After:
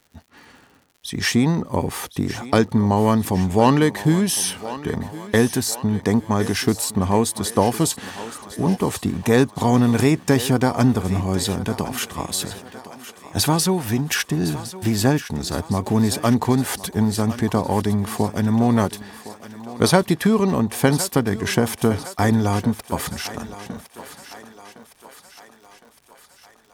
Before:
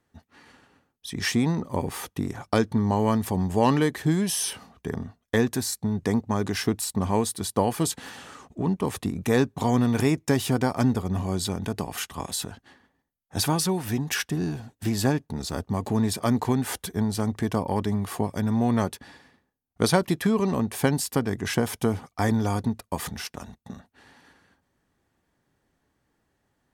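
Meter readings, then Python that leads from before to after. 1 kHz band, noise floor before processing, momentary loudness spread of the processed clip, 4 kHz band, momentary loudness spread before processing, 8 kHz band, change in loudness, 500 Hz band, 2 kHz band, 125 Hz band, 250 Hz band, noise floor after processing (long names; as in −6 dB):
+6.0 dB, −75 dBFS, 15 LU, +6.0 dB, 10 LU, +6.0 dB, +5.5 dB, +5.5 dB, +6.0 dB, +5.5 dB, +5.5 dB, −53 dBFS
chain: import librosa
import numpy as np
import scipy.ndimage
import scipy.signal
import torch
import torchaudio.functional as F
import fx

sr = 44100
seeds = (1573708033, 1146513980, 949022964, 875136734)

y = fx.echo_thinned(x, sr, ms=1061, feedback_pct=58, hz=360.0, wet_db=-13.0)
y = fx.dmg_crackle(y, sr, seeds[0], per_s=130.0, level_db=-47.0)
y = y * librosa.db_to_amplitude(5.5)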